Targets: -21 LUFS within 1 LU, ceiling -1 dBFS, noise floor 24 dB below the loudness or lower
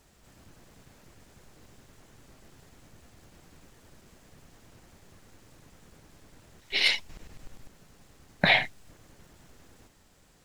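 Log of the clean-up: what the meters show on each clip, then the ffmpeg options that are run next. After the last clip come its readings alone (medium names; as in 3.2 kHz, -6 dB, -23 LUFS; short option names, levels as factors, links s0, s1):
loudness -25.0 LUFS; peak level -5.5 dBFS; loudness target -21.0 LUFS
-> -af "volume=1.58"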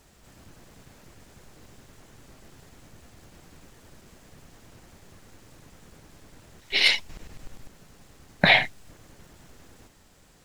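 loudness -21.0 LUFS; peak level -1.5 dBFS; noise floor -57 dBFS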